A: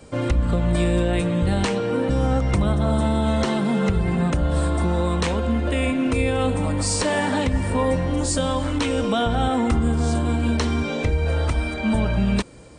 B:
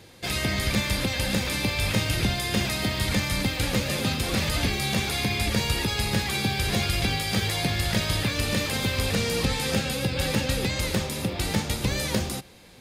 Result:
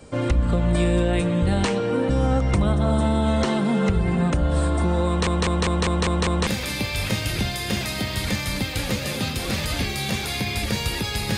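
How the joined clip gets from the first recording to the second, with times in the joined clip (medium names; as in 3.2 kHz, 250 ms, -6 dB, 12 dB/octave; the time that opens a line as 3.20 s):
A
5.07 s: stutter in place 0.20 s, 7 plays
6.47 s: go over to B from 1.31 s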